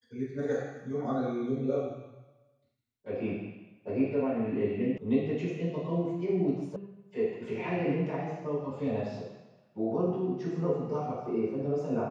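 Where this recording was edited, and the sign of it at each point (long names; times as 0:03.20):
0:04.98: cut off before it has died away
0:06.76: cut off before it has died away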